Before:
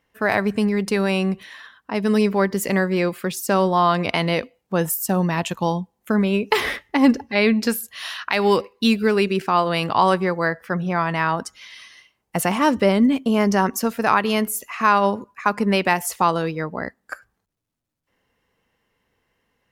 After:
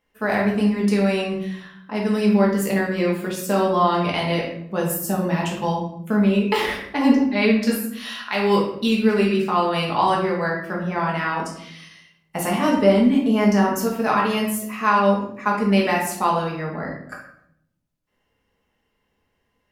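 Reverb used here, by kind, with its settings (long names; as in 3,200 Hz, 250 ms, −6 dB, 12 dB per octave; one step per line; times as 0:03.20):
rectangular room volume 150 cubic metres, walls mixed, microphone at 1.4 metres
level −6.5 dB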